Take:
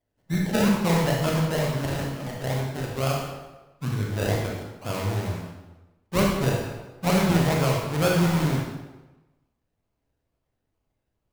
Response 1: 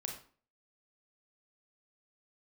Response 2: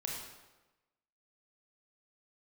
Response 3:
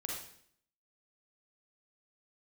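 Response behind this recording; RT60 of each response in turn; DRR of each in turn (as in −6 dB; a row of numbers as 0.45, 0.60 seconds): 2; 0.40, 1.1, 0.60 seconds; 1.5, −2.0, −2.0 decibels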